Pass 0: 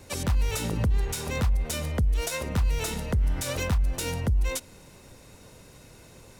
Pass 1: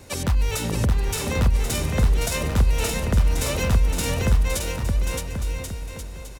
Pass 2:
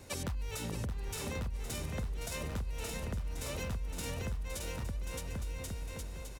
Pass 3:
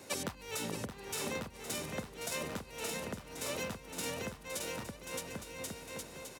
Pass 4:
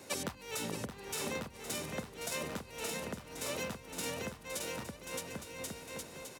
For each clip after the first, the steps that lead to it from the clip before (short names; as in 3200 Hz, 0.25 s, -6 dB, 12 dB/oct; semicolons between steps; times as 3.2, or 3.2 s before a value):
bouncing-ball echo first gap 0.62 s, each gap 0.75×, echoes 5; gain +3.5 dB
compressor 6:1, threshold -28 dBFS, peak gain reduction 14 dB; gain -7 dB
HPF 210 Hz 12 dB/oct; gain +3 dB
notches 50/100 Hz